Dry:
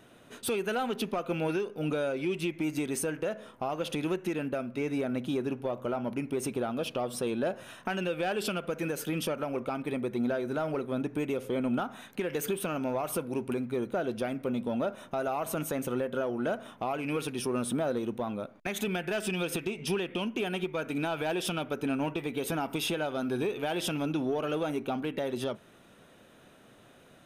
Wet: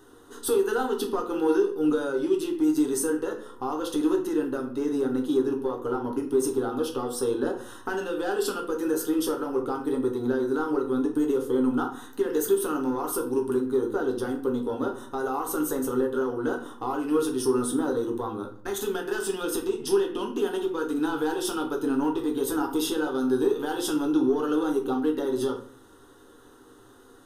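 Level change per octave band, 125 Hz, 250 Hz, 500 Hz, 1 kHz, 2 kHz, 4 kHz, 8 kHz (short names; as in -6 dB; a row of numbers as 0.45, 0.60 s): -4.5, +6.5, +6.0, +3.5, 0.0, 0.0, +5.5 dB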